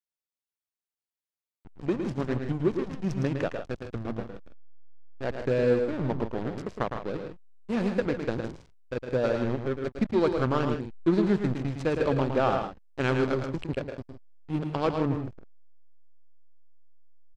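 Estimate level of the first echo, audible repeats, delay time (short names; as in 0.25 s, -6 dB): -6.5 dB, 2, 0.11 s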